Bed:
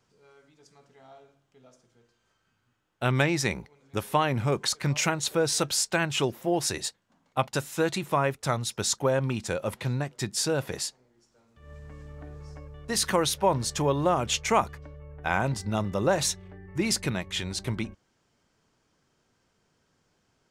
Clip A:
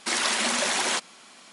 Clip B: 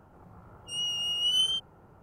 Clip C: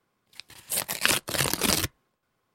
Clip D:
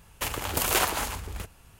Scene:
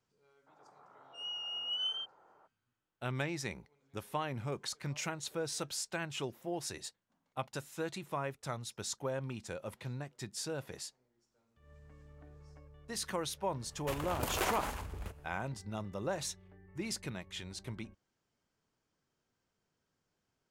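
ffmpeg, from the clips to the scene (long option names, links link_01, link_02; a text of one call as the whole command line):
ffmpeg -i bed.wav -i cue0.wav -i cue1.wav -i cue2.wav -i cue3.wav -filter_complex "[0:a]volume=-12.5dB[link_01];[2:a]highpass=620,lowpass=2000[link_02];[4:a]highshelf=frequency=2400:gain=-9.5[link_03];[link_02]atrim=end=2.02,asetpts=PTS-STARTPTS,volume=-2dB,afade=type=in:duration=0.02,afade=type=out:start_time=2:duration=0.02,adelay=460[link_04];[link_03]atrim=end=1.79,asetpts=PTS-STARTPTS,volume=-6dB,afade=type=in:duration=0.004:curve=hsin,afade=type=out:start_time=1.786:duration=0.004:curve=hsin,adelay=13660[link_05];[link_01][link_04][link_05]amix=inputs=3:normalize=0" out.wav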